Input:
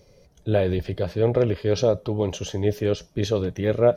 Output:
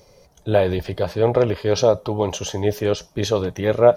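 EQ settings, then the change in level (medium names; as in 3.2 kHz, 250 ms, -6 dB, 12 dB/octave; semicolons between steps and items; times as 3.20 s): peaking EQ 920 Hz +10 dB 1.3 oct; treble shelf 3.7 kHz +9 dB; 0.0 dB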